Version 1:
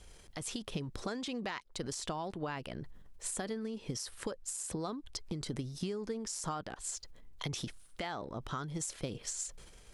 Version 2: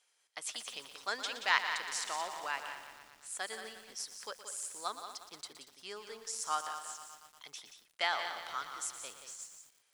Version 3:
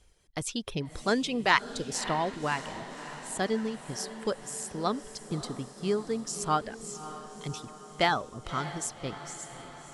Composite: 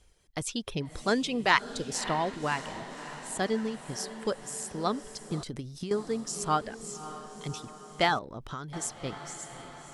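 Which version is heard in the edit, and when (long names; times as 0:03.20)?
3
0:05.43–0:05.91: punch in from 1
0:08.19–0:08.73: punch in from 1
not used: 2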